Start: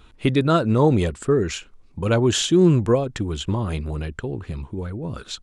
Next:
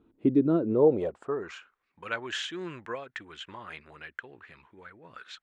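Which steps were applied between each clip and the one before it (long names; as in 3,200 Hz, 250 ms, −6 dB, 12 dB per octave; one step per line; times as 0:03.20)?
band-pass filter sweep 300 Hz → 1,800 Hz, 0:00.55–0:01.85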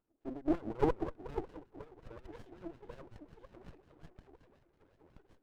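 echo with a time of its own for lows and highs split 370 Hz, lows 231 ms, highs 501 ms, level −11.5 dB
LFO wah 5.5 Hz 290–1,500 Hz, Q 5.5
windowed peak hold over 33 samples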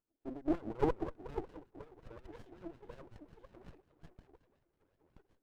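noise gate −58 dBFS, range −7 dB
level −1.5 dB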